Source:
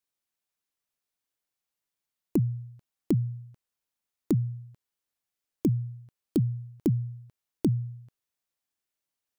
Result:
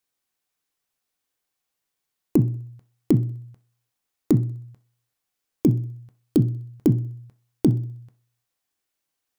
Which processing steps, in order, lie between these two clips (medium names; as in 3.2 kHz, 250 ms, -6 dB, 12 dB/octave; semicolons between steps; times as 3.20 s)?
thinning echo 63 ms, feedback 54%, high-pass 280 Hz, level -21 dB; on a send at -8 dB: reverberation RT60 0.35 s, pre-delay 3 ms; on the sum: trim +6 dB